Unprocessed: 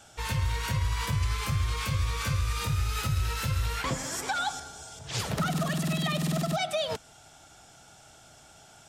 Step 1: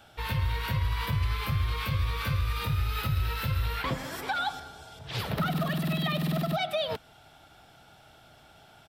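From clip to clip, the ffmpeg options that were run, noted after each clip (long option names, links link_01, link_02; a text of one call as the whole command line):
ffmpeg -i in.wav -af "firequalizer=gain_entry='entry(3900,0);entry(6700,-17);entry(14000,4)':delay=0.05:min_phase=1" out.wav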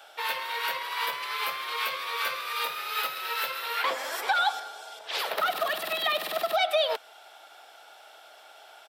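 ffmpeg -i in.wav -af "highpass=frequency=480:width=0.5412,highpass=frequency=480:width=1.3066,volume=5.5dB" out.wav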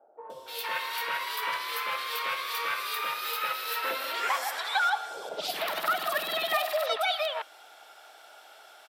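ffmpeg -i in.wav -filter_complex "[0:a]acrossover=split=680|3100[link_01][link_02][link_03];[link_03]adelay=300[link_04];[link_02]adelay=460[link_05];[link_01][link_05][link_04]amix=inputs=3:normalize=0,volume=1dB" out.wav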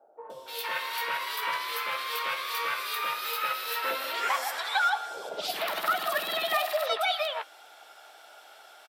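ffmpeg -i in.wav -filter_complex "[0:a]asplit=2[link_01][link_02];[link_02]adelay=15,volume=-12dB[link_03];[link_01][link_03]amix=inputs=2:normalize=0" out.wav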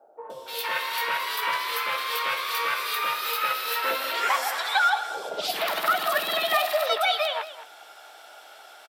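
ffmpeg -i in.wav -af "aecho=1:1:218:0.2,volume=4dB" out.wav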